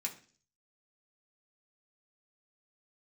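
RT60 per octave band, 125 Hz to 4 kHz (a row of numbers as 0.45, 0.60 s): 0.65, 0.55, 0.50, 0.40, 0.45, 0.55 s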